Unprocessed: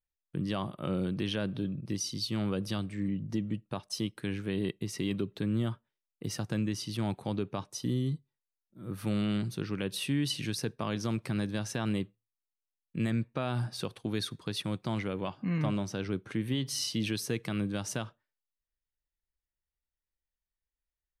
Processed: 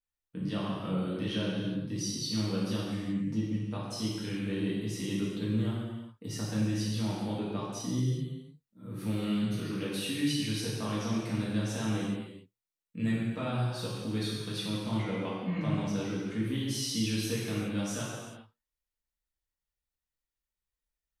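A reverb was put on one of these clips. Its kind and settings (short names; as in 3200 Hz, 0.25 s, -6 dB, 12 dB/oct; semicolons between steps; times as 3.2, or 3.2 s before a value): non-linear reverb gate 0.45 s falling, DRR -7.5 dB; gain -8 dB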